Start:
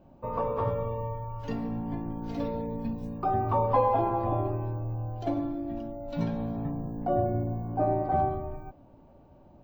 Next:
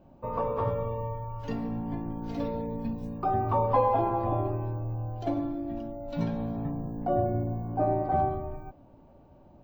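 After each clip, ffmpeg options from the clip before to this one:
ffmpeg -i in.wav -af anull out.wav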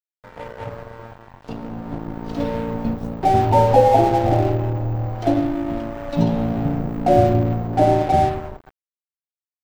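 ffmpeg -i in.wav -af "afftfilt=real='re*(1-between(b*sr/4096,960,2500))':imag='im*(1-between(b*sr/4096,960,2500))':win_size=4096:overlap=0.75,dynaudnorm=framelen=460:gausssize=9:maxgain=12.5dB,aeval=exprs='sgn(val(0))*max(abs(val(0))-0.0282,0)':channel_layout=same,volume=2dB" out.wav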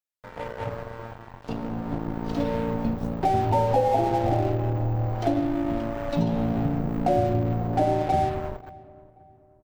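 ffmpeg -i in.wav -filter_complex "[0:a]acompressor=threshold=-22dB:ratio=2.5,asplit=2[link_01][link_02];[link_02]adelay=535,lowpass=frequency=1500:poles=1,volume=-21dB,asplit=2[link_03][link_04];[link_04]adelay=535,lowpass=frequency=1500:poles=1,volume=0.4,asplit=2[link_05][link_06];[link_06]adelay=535,lowpass=frequency=1500:poles=1,volume=0.4[link_07];[link_01][link_03][link_05][link_07]amix=inputs=4:normalize=0" out.wav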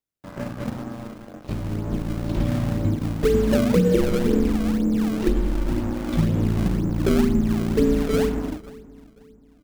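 ffmpeg -i in.wav -filter_complex "[0:a]afreqshift=-330,asplit=2[link_01][link_02];[link_02]acrusher=samples=28:mix=1:aa=0.000001:lfo=1:lforange=44.8:lforate=2,volume=-4.5dB[link_03];[link_01][link_03]amix=inputs=2:normalize=0" out.wav

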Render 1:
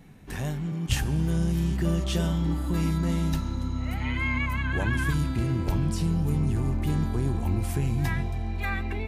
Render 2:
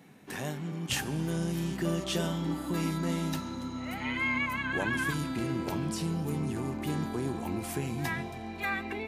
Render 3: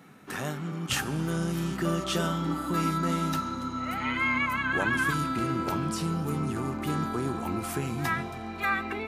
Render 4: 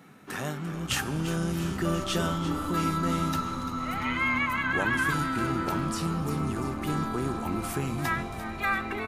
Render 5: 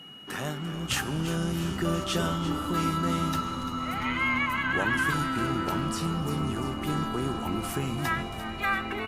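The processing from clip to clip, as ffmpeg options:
ffmpeg -i in.wav -af "highpass=220" out.wav
ffmpeg -i in.wav -af "equalizer=frequency=1300:width=4.6:gain=12.5,volume=2dB" out.wav
ffmpeg -i in.wav -filter_complex "[0:a]asplit=8[link_01][link_02][link_03][link_04][link_05][link_06][link_07][link_08];[link_02]adelay=344,afreqshift=-83,volume=-12.5dB[link_09];[link_03]adelay=688,afreqshift=-166,volume=-16.5dB[link_10];[link_04]adelay=1032,afreqshift=-249,volume=-20.5dB[link_11];[link_05]adelay=1376,afreqshift=-332,volume=-24.5dB[link_12];[link_06]adelay=1720,afreqshift=-415,volume=-28.6dB[link_13];[link_07]adelay=2064,afreqshift=-498,volume=-32.6dB[link_14];[link_08]adelay=2408,afreqshift=-581,volume=-36.6dB[link_15];[link_01][link_09][link_10][link_11][link_12][link_13][link_14][link_15]amix=inputs=8:normalize=0" out.wav
ffmpeg -i in.wav -af "aeval=exprs='val(0)+0.00562*sin(2*PI*2900*n/s)':channel_layout=same" -ar 48000 -c:a libopus -b:a 64k out.opus

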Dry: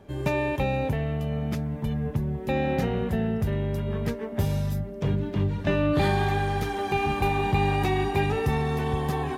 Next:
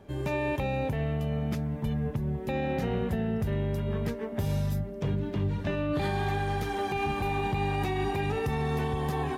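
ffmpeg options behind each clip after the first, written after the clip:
ffmpeg -i in.wav -af "alimiter=limit=-19dB:level=0:latency=1:release=107,volume=-1.5dB" out.wav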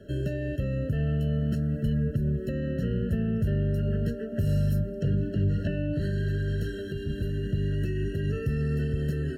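ffmpeg -i in.wav -filter_complex "[0:a]acrossover=split=230[link_01][link_02];[link_02]acompressor=threshold=-38dB:ratio=6[link_03];[link_01][link_03]amix=inputs=2:normalize=0,afftfilt=real='re*eq(mod(floor(b*sr/1024/650),2),0)':imag='im*eq(mod(floor(b*sr/1024/650),2),0)':win_size=1024:overlap=0.75,volume=4.5dB" out.wav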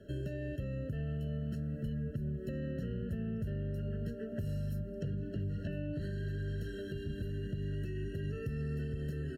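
ffmpeg -i in.wav -af "acompressor=threshold=-29dB:ratio=3,aecho=1:1:1008:0.0891,volume=-6dB" out.wav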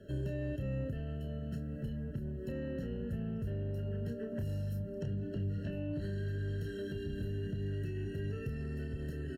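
ffmpeg -i in.wav -filter_complex "[0:a]asoftclip=type=tanh:threshold=-27.5dB,asplit=2[link_01][link_02];[link_02]adelay=30,volume=-7dB[link_03];[link_01][link_03]amix=inputs=2:normalize=0" out.wav

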